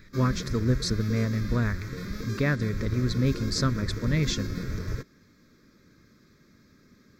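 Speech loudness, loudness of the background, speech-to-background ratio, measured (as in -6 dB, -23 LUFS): -28.0 LUFS, -35.0 LUFS, 7.0 dB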